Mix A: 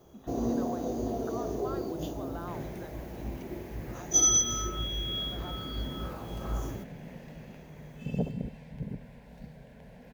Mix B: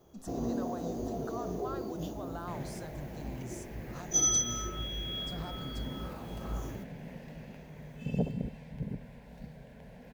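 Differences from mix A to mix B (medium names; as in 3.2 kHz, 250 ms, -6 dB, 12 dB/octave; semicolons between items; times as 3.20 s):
speech: remove brick-wall FIR band-pass 190–4000 Hz; first sound -4.0 dB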